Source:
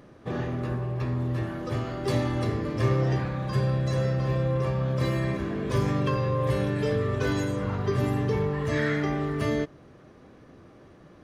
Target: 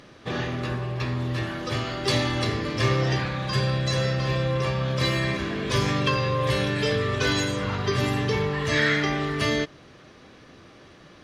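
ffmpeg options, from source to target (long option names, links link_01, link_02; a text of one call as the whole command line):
ffmpeg -i in.wav -af "equalizer=frequency=3900:width_type=o:width=2.6:gain=14" out.wav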